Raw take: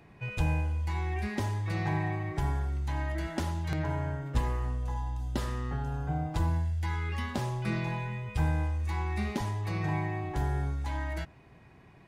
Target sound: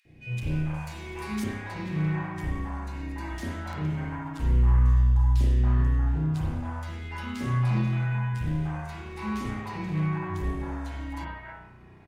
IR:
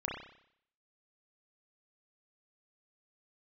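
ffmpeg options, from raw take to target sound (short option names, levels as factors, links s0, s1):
-filter_complex "[0:a]asettb=1/sr,asplit=3[s0][s1][s2];[s0]atrim=end=0.744[s3];[s1]atrim=start=0.74:end=1.44,asetpts=PTS-STARTPTS,afade=t=in:d=0.004:c=qsin,afade=t=out:st=0.696:d=0.004:c=qsin,highshelf=f=4500:g=10.5[s4];[s2]atrim=start=1.436[s5];[s3][s4]acrossfade=d=0.004:c1=hsin:c2=qsin[s6];[s6][s5]acrossfade=d=0.004:c1=qsin:c2=hsin,volume=22.4,asoftclip=hard,volume=0.0447,asettb=1/sr,asplit=3[s7][s8][s9];[s7]atrim=end=2.684[s10];[s8]atrim=start=2.68:end=3.3,asetpts=PTS-STARTPTS,afade=t=in:d=0.004:c=qsin,afade=t=out:st=0.616:d=0.004:c=qsin,asuperstop=centerf=3200:order=4:qfactor=7.2[s11];[s9]atrim=start=3.296[s12];[s10][s11]acrossfade=d=0.004:c1=hsin:c2=qsin[s13];[s13][s12]acrossfade=d=0.004:c1=qsin:c2=hsin,acrossover=split=570|2100[s14][s15][s16];[s14]adelay=50[s17];[s15]adelay=280[s18];[s17][s18][s16]amix=inputs=3:normalize=0[s19];[1:a]atrim=start_sample=2205,asetrate=40572,aresample=44100[s20];[s19][s20]afir=irnorm=-1:irlink=0"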